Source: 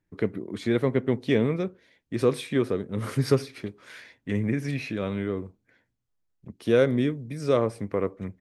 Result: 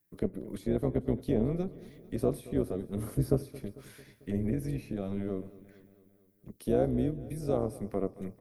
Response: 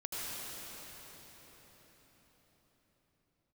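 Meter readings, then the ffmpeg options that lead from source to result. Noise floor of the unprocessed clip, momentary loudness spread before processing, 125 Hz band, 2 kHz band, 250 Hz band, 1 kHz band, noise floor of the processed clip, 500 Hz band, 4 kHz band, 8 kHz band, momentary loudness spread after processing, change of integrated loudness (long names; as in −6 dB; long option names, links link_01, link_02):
−77 dBFS, 12 LU, −4.5 dB, −17.5 dB, −4.5 dB, −7.5 dB, −66 dBFS, −7.0 dB, −16.0 dB, −5.5 dB, 13 LU, −6.0 dB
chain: -filter_complex "[0:a]highpass=130,bass=frequency=250:gain=7,treble=frequency=4000:gain=10,acrossover=split=980[link_01][link_02];[link_01]tremolo=f=190:d=0.788[link_03];[link_02]acompressor=threshold=-52dB:ratio=6[link_04];[link_03][link_04]amix=inputs=2:normalize=0,aexciter=amount=4.5:drive=5.8:freq=10000,asplit=2[link_05][link_06];[link_06]aecho=0:1:223|446|669|892|1115:0.112|0.0662|0.0391|0.023|0.0136[link_07];[link_05][link_07]amix=inputs=2:normalize=0,volume=-4dB"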